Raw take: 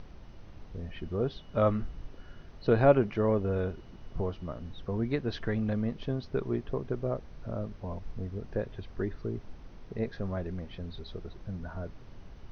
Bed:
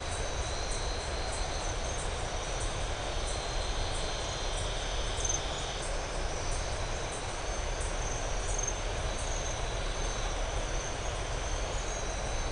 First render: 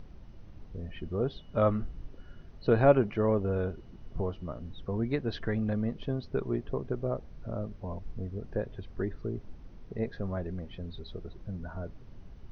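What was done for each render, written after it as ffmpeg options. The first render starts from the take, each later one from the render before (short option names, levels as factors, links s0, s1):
-af "afftdn=nr=6:nf=-50"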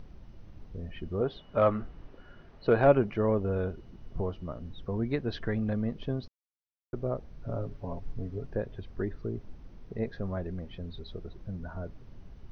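-filter_complex "[0:a]asettb=1/sr,asplit=3[s0][s1][s2];[s0]atrim=end=1.214[s3];[s1]atrim=start=1.21:end=2.87,asetpts=PTS-STARTPTS,afade=t=in:d=0.004:c=qsin,afade=t=out:st=1.656:d=0.004:c=qsin,asplit=2[s4][s5];[s5]highpass=f=720:p=1,volume=3.98,asoftclip=type=tanh:threshold=0.282[s6];[s4][s6]amix=inputs=2:normalize=0,lowpass=f=1700:p=1,volume=0.501[s7];[s2]atrim=start=2.866[s8];[s3][s7]acrossfade=d=0.004:c1=hsin:c2=qsin[s9];[s9][s8]acrossfade=d=0.004:c1=qsin:c2=hsin,asettb=1/sr,asplit=3[s10][s11][s12];[s10]atrim=end=7.464[s13];[s11]atrim=start=7.46:end=8.47,asetpts=PTS-STARTPTS,afade=t=in:d=0.004:c=qsin,afade=t=out:st=1.006:d=0.004:c=qsin,aecho=1:1:7.2:0.66,atrim=end_sample=44541[s14];[s12]atrim=start=8.466[s15];[s13][s14]acrossfade=d=0.004:c1=hsin:c2=qsin[s16];[s16][s15]acrossfade=d=0.004:c1=qsin:c2=hsin,asplit=3[s17][s18][s19];[s17]atrim=end=6.28,asetpts=PTS-STARTPTS,afade=t=out:st=6.276:d=0.004:c=hsin[s20];[s18]atrim=start=6.28:end=6.93,asetpts=PTS-STARTPTS,volume=0[s21];[s19]atrim=start=6.93,asetpts=PTS-STARTPTS,afade=t=in:d=0.004:c=hsin[s22];[s20][s21][s22]concat=n=3:v=0:a=1"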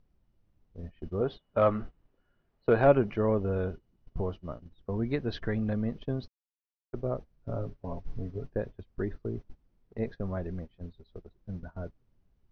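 -af "agate=range=0.0891:threshold=0.0141:ratio=16:detection=peak"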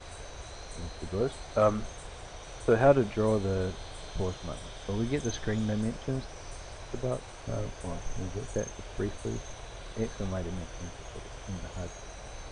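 -filter_complex "[1:a]volume=0.335[s0];[0:a][s0]amix=inputs=2:normalize=0"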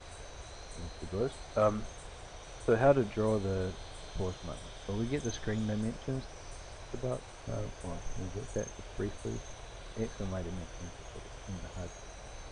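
-af "volume=0.668"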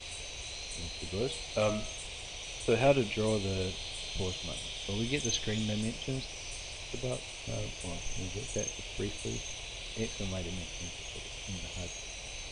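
-af "highshelf=f=2000:t=q:w=3:g=9,bandreject=f=159.8:t=h:w=4,bandreject=f=319.6:t=h:w=4,bandreject=f=479.4:t=h:w=4,bandreject=f=639.2:t=h:w=4,bandreject=f=799:t=h:w=4,bandreject=f=958.8:t=h:w=4,bandreject=f=1118.6:t=h:w=4,bandreject=f=1278.4:t=h:w=4,bandreject=f=1438.2:t=h:w=4,bandreject=f=1598:t=h:w=4,bandreject=f=1757.8:t=h:w=4,bandreject=f=1917.6:t=h:w=4,bandreject=f=2077.4:t=h:w=4,bandreject=f=2237.2:t=h:w=4,bandreject=f=2397:t=h:w=4,bandreject=f=2556.8:t=h:w=4,bandreject=f=2716.6:t=h:w=4,bandreject=f=2876.4:t=h:w=4,bandreject=f=3036.2:t=h:w=4,bandreject=f=3196:t=h:w=4,bandreject=f=3355.8:t=h:w=4,bandreject=f=3515.6:t=h:w=4,bandreject=f=3675.4:t=h:w=4,bandreject=f=3835.2:t=h:w=4,bandreject=f=3995:t=h:w=4,bandreject=f=4154.8:t=h:w=4,bandreject=f=4314.6:t=h:w=4"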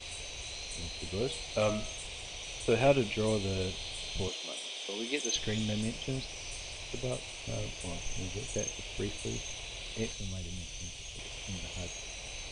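-filter_complex "[0:a]asettb=1/sr,asplit=3[s0][s1][s2];[s0]atrim=end=4.284[s3];[s1]atrim=start=4.28:end=5.36,asetpts=PTS-STARTPTS,afade=t=in:d=0.004:c=qsin,afade=t=out:st=1.076:d=0.004:c=qsin,highpass=f=270:w=0.5412,highpass=f=270:w=1.3066[s4];[s2]atrim=start=5.356[s5];[s3][s4]acrossfade=d=0.004:c1=hsin:c2=qsin[s6];[s6][s5]acrossfade=d=0.004:c1=qsin:c2=hsin,asettb=1/sr,asplit=3[s7][s8][s9];[s7]atrim=end=10.124[s10];[s8]atrim=start=10.12:end=11.19,asetpts=PTS-STARTPTS,afade=t=in:d=0.004:c=qsin,afade=t=out:st=1.066:d=0.004:c=qsin,acrossover=split=180|3000[s11][s12][s13];[s12]acompressor=threshold=0.00141:ratio=2:attack=3.2:release=140:knee=2.83:detection=peak[s14];[s11][s14][s13]amix=inputs=3:normalize=0[s15];[s9]atrim=start=11.186[s16];[s10][s15]acrossfade=d=0.004:c1=hsin:c2=qsin[s17];[s17][s16]acrossfade=d=0.004:c1=qsin:c2=hsin"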